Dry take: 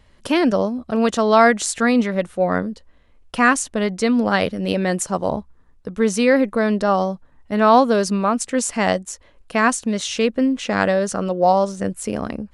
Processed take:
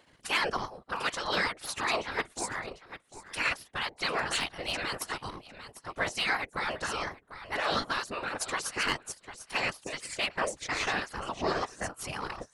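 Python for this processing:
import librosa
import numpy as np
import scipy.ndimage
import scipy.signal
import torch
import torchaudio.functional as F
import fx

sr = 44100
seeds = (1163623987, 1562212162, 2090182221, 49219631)

y = fx.echo_feedback(x, sr, ms=748, feedback_pct=16, wet_db=-13.0)
y = fx.transient(y, sr, attack_db=0, sustain_db=-12)
y = fx.spec_gate(y, sr, threshold_db=-15, keep='weak')
y = 10.0 ** (-16.0 / 20.0) * np.tanh(y / 10.0 ** (-16.0 / 20.0))
y = fx.whisperise(y, sr, seeds[0])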